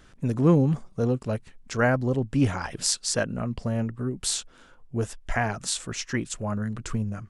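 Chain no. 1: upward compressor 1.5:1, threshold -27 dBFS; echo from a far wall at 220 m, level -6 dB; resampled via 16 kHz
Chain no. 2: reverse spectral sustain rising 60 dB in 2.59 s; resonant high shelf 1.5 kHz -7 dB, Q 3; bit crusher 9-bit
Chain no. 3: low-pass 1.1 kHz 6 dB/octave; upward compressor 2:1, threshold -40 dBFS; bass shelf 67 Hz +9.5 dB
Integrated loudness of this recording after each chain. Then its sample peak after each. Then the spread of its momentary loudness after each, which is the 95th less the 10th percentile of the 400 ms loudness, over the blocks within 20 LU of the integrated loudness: -26.5 LUFS, -23.5 LUFS, -26.5 LUFS; -7.5 dBFS, -4.0 dBFS, -8.0 dBFS; 10 LU, 9 LU, 15 LU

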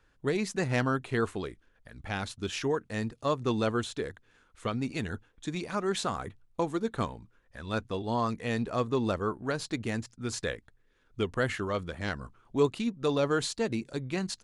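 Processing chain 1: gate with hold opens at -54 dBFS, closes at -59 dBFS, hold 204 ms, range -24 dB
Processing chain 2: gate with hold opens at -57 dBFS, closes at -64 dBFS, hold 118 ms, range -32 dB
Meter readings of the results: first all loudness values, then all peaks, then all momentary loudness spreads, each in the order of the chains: -32.0 LUFS, -32.0 LUFS; -13.5 dBFS, -13.5 dBFS; 10 LU, 10 LU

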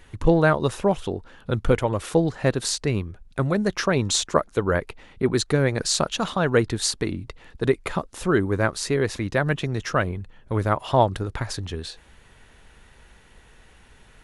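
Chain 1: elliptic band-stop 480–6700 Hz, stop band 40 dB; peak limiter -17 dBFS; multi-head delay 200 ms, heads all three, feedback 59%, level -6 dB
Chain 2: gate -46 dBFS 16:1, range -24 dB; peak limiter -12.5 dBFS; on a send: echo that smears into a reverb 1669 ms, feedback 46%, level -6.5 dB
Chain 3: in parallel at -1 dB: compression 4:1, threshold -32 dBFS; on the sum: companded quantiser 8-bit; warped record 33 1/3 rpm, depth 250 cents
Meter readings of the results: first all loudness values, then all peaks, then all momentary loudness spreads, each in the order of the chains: -24.5 LUFS, -25.5 LUFS, -22.0 LUFS; -9.0 dBFS, -10.0 dBFS, -2.0 dBFS; 7 LU, 9 LU, 8 LU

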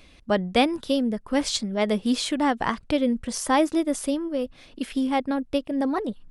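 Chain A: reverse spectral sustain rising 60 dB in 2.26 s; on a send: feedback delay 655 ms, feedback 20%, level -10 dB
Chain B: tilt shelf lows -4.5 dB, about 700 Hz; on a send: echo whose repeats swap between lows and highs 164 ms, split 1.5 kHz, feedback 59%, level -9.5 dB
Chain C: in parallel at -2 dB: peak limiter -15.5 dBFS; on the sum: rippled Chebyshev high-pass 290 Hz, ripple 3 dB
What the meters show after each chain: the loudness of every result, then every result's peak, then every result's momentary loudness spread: -20.0 LUFS, -25.0 LUFS, -24.5 LUFS; -2.0 dBFS, -6.5 dBFS, -7.5 dBFS; 6 LU, 9 LU, 7 LU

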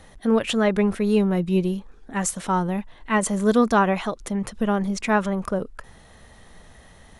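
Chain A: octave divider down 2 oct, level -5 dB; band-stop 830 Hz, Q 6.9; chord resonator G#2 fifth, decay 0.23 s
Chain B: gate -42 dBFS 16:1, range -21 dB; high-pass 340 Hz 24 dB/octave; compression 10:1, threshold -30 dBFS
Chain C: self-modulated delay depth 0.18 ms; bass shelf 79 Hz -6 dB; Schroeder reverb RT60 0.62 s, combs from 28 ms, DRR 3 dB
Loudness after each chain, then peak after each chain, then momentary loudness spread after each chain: -33.5 LUFS, -35.5 LUFS, -21.5 LUFS; -14.5 dBFS, -17.0 dBFS, -5.5 dBFS; 12 LU, 6 LU, 9 LU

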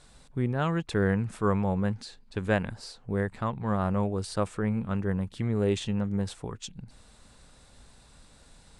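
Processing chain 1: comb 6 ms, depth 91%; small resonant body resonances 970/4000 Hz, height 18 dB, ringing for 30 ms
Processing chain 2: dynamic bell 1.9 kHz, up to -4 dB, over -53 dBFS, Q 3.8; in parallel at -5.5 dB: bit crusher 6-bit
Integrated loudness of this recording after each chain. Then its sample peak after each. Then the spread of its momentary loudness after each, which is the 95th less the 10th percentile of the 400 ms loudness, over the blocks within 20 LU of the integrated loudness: -25.0 LUFS, -26.0 LUFS; -8.0 dBFS, -7.0 dBFS; 12 LU, 12 LU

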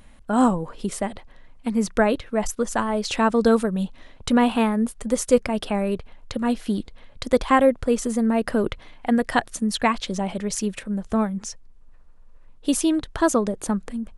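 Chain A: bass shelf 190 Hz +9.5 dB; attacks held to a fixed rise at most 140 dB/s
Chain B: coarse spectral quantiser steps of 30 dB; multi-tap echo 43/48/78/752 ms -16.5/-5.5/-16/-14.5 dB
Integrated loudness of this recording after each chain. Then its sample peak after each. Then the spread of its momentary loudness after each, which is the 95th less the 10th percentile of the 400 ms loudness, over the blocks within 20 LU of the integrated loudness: -23.5 LUFS, -22.5 LUFS; -5.0 dBFS, -4.0 dBFS; 13 LU, 12 LU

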